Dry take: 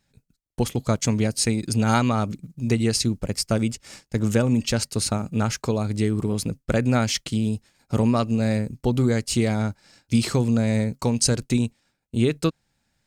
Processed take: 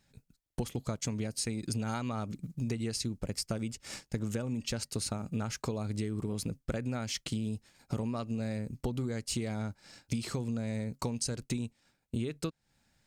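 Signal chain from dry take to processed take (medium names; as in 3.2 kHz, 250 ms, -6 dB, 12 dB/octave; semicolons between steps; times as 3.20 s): compression 10:1, threshold -31 dBFS, peak gain reduction 16.5 dB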